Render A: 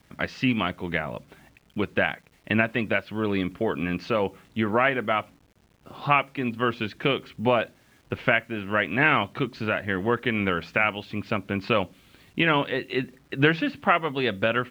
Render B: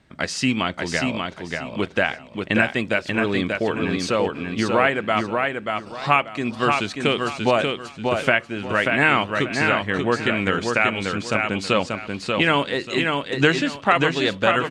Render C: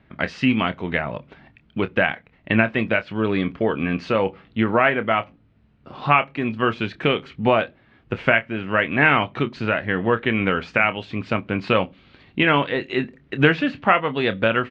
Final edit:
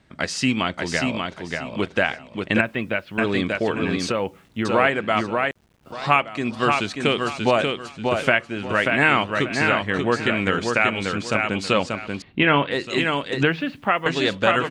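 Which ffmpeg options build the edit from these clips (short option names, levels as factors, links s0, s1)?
-filter_complex "[0:a]asplit=4[s0][s1][s2][s3];[1:a]asplit=6[s4][s5][s6][s7][s8][s9];[s4]atrim=end=2.612[s10];[s0]atrim=start=2.608:end=3.182[s11];[s5]atrim=start=3.178:end=4.122[s12];[s1]atrim=start=4.118:end=4.652[s13];[s6]atrim=start=4.648:end=5.512[s14];[s2]atrim=start=5.508:end=5.922[s15];[s7]atrim=start=5.918:end=12.222[s16];[2:a]atrim=start=12.218:end=12.712[s17];[s8]atrim=start=12.708:end=13.432[s18];[s3]atrim=start=13.428:end=14.062[s19];[s9]atrim=start=14.058[s20];[s10][s11]acrossfade=d=0.004:c1=hsin:c2=hsin[s21];[s21][s12]acrossfade=d=0.004:c1=hsin:c2=hsin[s22];[s22][s13]acrossfade=d=0.004:c1=hsin:c2=hsin[s23];[s23][s14]acrossfade=d=0.004:c1=hsin:c2=hsin[s24];[s24][s15]acrossfade=d=0.004:c1=hsin:c2=hsin[s25];[s25][s16]acrossfade=d=0.004:c1=hsin:c2=hsin[s26];[s26][s17]acrossfade=d=0.004:c1=hsin:c2=hsin[s27];[s27][s18]acrossfade=d=0.004:c1=hsin:c2=hsin[s28];[s28][s19]acrossfade=d=0.004:c1=hsin:c2=hsin[s29];[s29][s20]acrossfade=d=0.004:c1=hsin:c2=hsin"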